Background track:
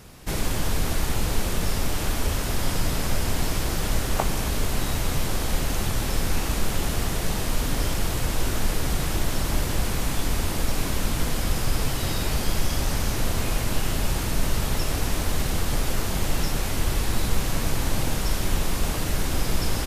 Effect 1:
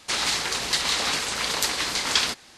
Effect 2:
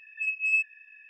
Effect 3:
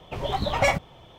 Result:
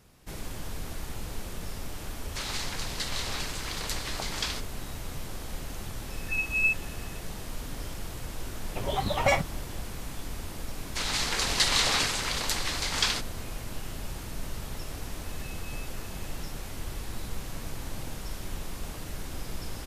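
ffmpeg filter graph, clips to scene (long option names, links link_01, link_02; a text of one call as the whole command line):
ffmpeg -i bed.wav -i cue0.wav -i cue1.wav -i cue2.wav -filter_complex "[1:a]asplit=2[link_01][link_02];[2:a]asplit=2[link_03][link_04];[0:a]volume=-12.5dB[link_05];[link_02]dynaudnorm=framelen=170:gausssize=5:maxgain=9dB[link_06];[link_04]acompressor=threshold=-44dB:ratio=6:attack=3.2:release=140:knee=1:detection=peak[link_07];[link_01]atrim=end=2.57,asetpts=PTS-STARTPTS,volume=-10.5dB,afade=type=in:duration=0.004:curve=hsin,afade=type=out:start_time=2.566:duration=0.004:curve=hsin,adelay=2270[link_08];[link_03]atrim=end=1.09,asetpts=PTS-STARTPTS,volume=-0.5dB,afade=type=in:duration=0.004:curve=hsin,afade=type=out:start_time=1.086:duration=0.004:curve=hsin,adelay=6110[link_09];[3:a]atrim=end=1.18,asetpts=PTS-STARTPTS,volume=-2.5dB,afade=type=in:duration=0.004:curve=hsin,afade=type=out:start_time=1.176:duration=0.004:curve=hsin,adelay=8640[link_10];[link_06]atrim=end=2.57,asetpts=PTS-STARTPTS,volume=-7dB,afade=type=in:duration=0.004:curve=hsin,afade=type=out:start_time=2.566:duration=0.004:curve=hsin,adelay=10870[link_11];[link_07]atrim=end=1.09,asetpts=PTS-STARTPTS,volume=-5.5dB,afade=type=in:duration=0.004:curve=hsin,afade=type=out:start_time=1.086:duration=0.004:curve=hsin,adelay=672084S[link_12];[link_05][link_08][link_09][link_10][link_11][link_12]amix=inputs=6:normalize=0" out.wav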